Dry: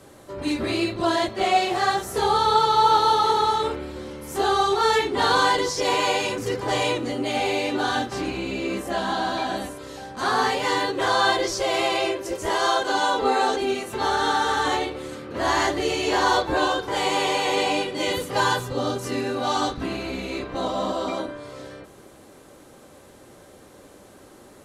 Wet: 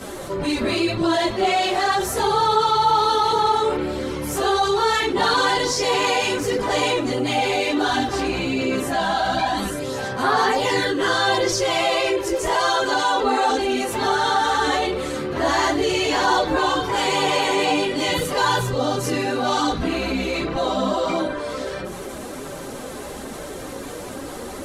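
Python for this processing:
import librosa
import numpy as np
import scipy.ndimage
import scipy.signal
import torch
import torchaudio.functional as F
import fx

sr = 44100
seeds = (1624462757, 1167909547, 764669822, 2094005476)

y = fx.chorus_voices(x, sr, voices=4, hz=0.36, base_ms=15, depth_ms=4.2, mix_pct=70)
y = fx.env_flatten(y, sr, amount_pct=50)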